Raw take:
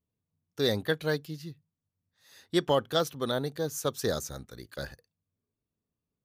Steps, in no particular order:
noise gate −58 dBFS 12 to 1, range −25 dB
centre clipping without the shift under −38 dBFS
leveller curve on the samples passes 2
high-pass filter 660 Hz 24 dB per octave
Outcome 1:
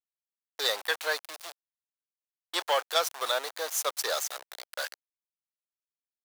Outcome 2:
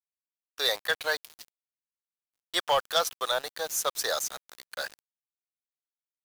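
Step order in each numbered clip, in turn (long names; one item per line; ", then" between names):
centre clipping without the shift, then noise gate, then leveller curve on the samples, then high-pass filter
high-pass filter, then leveller curve on the samples, then centre clipping without the shift, then noise gate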